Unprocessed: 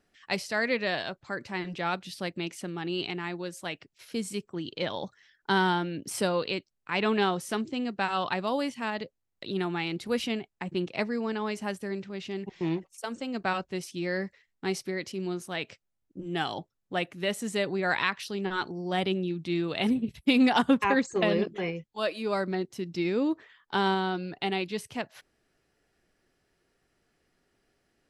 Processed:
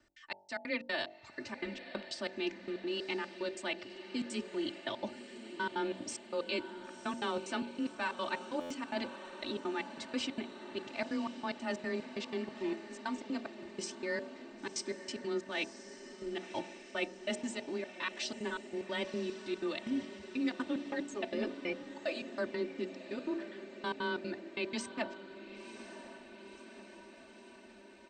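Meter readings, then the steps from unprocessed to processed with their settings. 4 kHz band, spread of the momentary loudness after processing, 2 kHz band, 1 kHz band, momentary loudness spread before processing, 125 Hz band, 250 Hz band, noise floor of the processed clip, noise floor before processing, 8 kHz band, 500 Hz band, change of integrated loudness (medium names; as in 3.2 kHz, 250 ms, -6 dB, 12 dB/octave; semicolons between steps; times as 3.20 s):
-7.0 dB, 12 LU, -8.0 dB, -11.0 dB, 11 LU, -16.5 dB, -9.0 dB, -55 dBFS, -79 dBFS, -4.5 dB, -7.5 dB, -8.5 dB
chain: Chebyshev low-pass 8.5 kHz, order 8; comb 3.4 ms, depth 97%; frequency shift +18 Hz; reverse; compression, threshold -32 dBFS, peak gain reduction 18 dB; reverse; trance gate "x.xx..x.x" 185 bpm -60 dB; de-hum 47.63 Hz, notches 19; on a send: echo that smears into a reverb 1028 ms, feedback 65%, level -12 dB; on the sum: buffer glitch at 8.60 s, samples 512, times 8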